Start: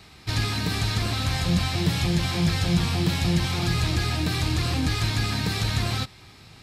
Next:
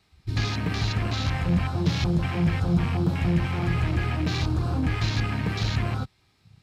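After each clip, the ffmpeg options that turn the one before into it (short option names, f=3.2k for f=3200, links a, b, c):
-af "afwtdn=0.0282"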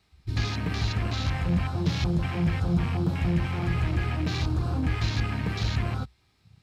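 -af "equalizer=f=61:w=4.7:g=9.5,volume=-2.5dB"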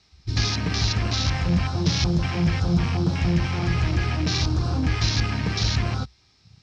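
-af "lowpass=f=5.6k:t=q:w=4.1,volume=3.5dB"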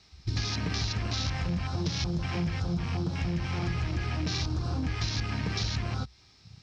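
-af "acompressor=threshold=-29dB:ratio=6,volume=1.5dB"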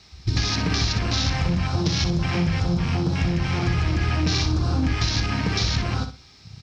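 -af "aecho=1:1:61|122|183:0.355|0.0852|0.0204,volume=8dB"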